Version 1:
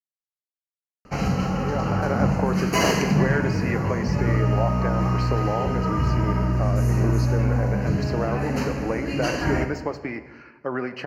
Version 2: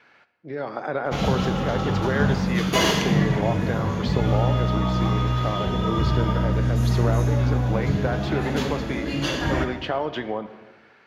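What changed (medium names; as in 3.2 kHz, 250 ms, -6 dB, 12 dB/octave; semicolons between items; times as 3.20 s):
speech: entry -1.15 s; master: remove Butterworth band-stop 3.5 kHz, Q 2.5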